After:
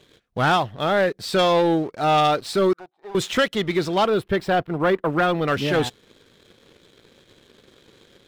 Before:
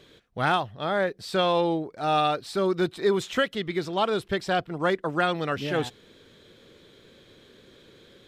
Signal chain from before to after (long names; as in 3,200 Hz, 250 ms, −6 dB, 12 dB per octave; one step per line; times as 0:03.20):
0:02.73–0:03.15: envelope filter 790–1,900 Hz, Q 9.9, down, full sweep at −26.5 dBFS
leveller curve on the samples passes 2
0:04.06–0:05.48: parametric band 6,400 Hz −10.5 dB 1.8 octaves